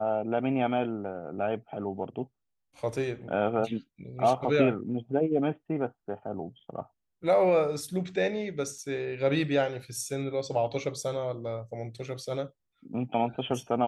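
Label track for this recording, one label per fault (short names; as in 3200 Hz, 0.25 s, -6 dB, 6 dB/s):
8.780000	8.780000	gap 3.7 ms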